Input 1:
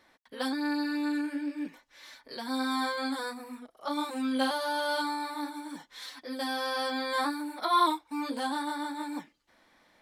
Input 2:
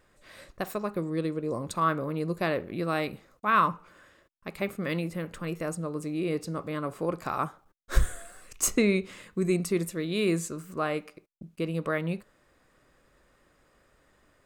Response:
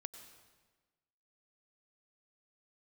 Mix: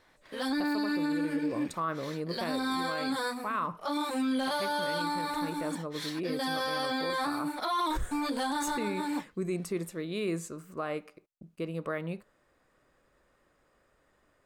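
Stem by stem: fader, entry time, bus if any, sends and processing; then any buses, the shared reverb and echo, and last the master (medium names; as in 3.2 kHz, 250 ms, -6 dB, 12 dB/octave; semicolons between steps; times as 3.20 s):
+0.5 dB, 0.00 s, no send, waveshaping leveller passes 1
-7.0 dB, 0.00 s, no send, peaking EQ 730 Hz +4 dB 2.7 oct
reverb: none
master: peak limiter -23.5 dBFS, peak gain reduction 10.5 dB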